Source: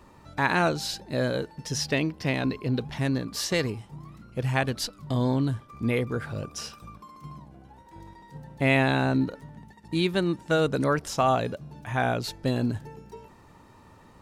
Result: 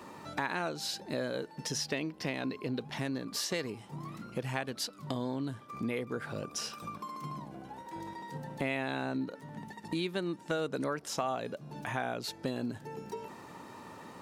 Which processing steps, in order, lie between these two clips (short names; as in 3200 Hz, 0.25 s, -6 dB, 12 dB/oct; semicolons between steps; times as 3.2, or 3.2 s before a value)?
HPF 190 Hz 12 dB/oct; compressor 3:1, threshold -43 dBFS, peak gain reduction 19 dB; gain +6.5 dB